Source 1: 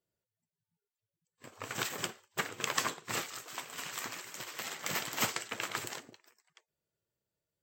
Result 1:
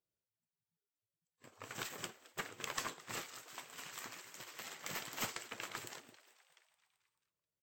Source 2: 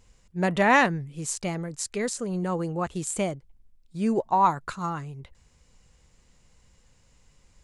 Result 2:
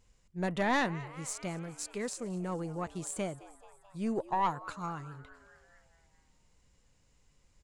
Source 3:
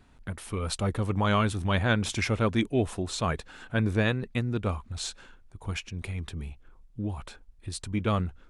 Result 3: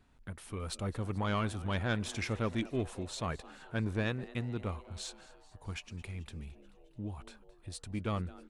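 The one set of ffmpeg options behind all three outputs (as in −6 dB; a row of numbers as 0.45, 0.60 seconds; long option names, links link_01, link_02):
-filter_complex "[0:a]asplit=7[link_01][link_02][link_03][link_04][link_05][link_06][link_07];[link_02]adelay=217,afreqshift=130,volume=-20dB[link_08];[link_03]adelay=434,afreqshift=260,volume=-23.9dB[link_09];[link_04]adelay=651,afreqshift=390,volume=-27.8dB[link_10];[link_05]adelay=868,afreqshift=520,volume=-31.6dB[link_11];[link_06]adelay=1085,afreqshift=650,volume=-35.5dB[link_12];[link_07]adelay=1302,afreqshift=780,volume=-39.4dB[link_13];[link_01][link_08][link_09][link_10][link_11][link_12][link_13]amix=inputs=7:normalize=0,aeval=exprs='(tanh(4.47*val(0)+0.35)-tanh(0.35))/4.47':channel_layout=same,volume=-7dB"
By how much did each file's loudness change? −8.0, −9.0, −8.0 LU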